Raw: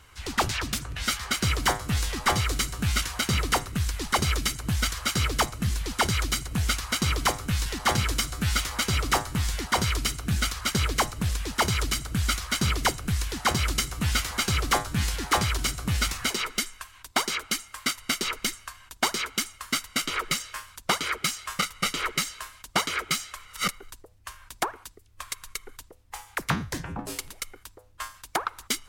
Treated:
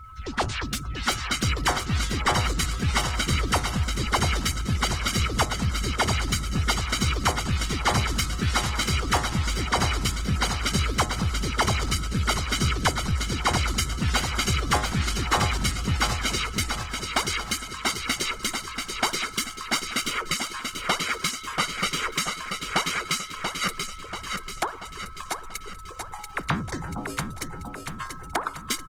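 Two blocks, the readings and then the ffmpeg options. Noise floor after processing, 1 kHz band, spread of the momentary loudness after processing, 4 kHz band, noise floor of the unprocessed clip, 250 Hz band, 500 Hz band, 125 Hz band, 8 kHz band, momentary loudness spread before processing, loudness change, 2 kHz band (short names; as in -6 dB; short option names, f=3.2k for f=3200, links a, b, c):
-39 dBFS, +2.0 dB, 9 LU, +1.0 dB, -54 dBFS, +2.5 dB, +2.0 dB, +2.0 dB, 0.0 dB, 11 LU, +1.0 dB, +1.5 dB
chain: -filter_complex "[0:a]aeval=exprs='val(0)+0.5*0.0133*sgn(val(0))':c=same,afftdn=nr=23:nf=-36,asplit=2[a][b];[b]aecho=0:1:686|1372|2058|2744|3430|4116|4802:0.531|0.276|0.144|0.0746|0.0388|0.0202|0.0105[c];[a][c]amix=inputs=2:normalize=0,aeval=exprs='val(0)+0.00708*sin(2*PI*1300*n/s)':c=same" -ar 48000 -c:a libopus -b:a 20k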